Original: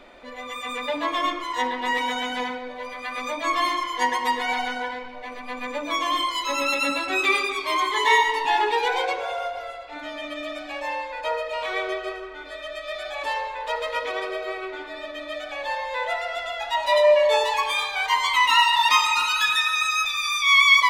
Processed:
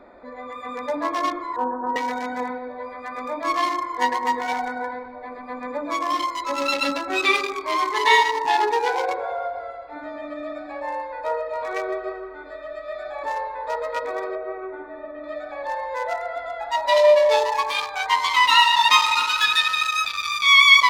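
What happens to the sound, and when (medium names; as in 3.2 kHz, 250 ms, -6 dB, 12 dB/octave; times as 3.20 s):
1.56–1.96 s: steep low-pass 1.6 kHz 96 dB/octave
14.35–15.24 s: distance through air 440 m
whole clip: local Wiener filter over 15 samples; high-pass 58 Hz 6 dB/octave; dynamic bell 4 kHz, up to +5 dB, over -39 dBFS, Q 2.2; trim +2.5 dB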